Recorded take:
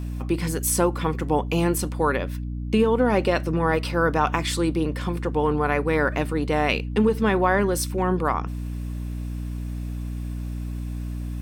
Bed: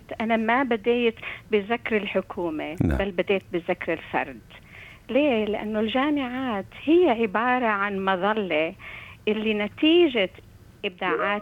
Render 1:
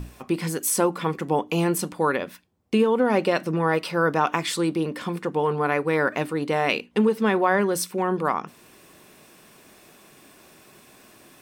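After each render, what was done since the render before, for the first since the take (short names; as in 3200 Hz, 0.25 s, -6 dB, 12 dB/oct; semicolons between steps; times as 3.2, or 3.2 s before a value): notches 60/120/180/240/300 Hz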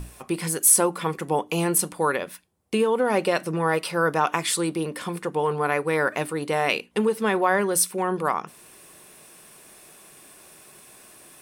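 fifteen-band EQ 100 Hz -4 dB, 250 Hz -6 dB, 10000 Hz +11 dB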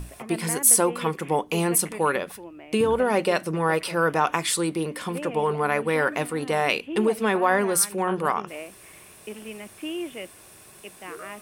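add bed -14 dB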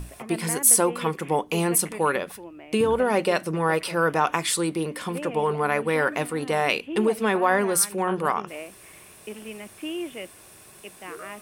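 nothing audible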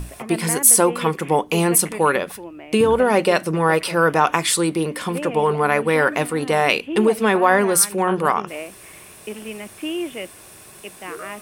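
gain +5.5 dB; limiter -1 dBFS, peak gain reduction 3 dB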